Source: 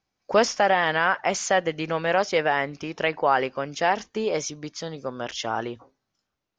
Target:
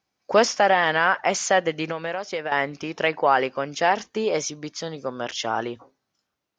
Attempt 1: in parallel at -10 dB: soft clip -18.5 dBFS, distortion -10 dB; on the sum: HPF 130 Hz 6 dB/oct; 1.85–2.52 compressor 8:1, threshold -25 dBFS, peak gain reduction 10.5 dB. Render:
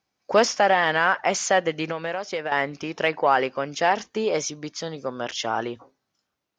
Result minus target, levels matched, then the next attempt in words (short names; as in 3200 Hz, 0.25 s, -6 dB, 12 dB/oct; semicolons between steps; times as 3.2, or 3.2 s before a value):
soft clip: distortion +9 dB
in parallel at -10 dB: soft clip -11 dBFS, distortion -19 dB; on the sum: HPF 130 Hz 6 dB/oct; 1.85–2.52 compressor 8:1, threshold -25 dBFS, peak gain reduction 11 dB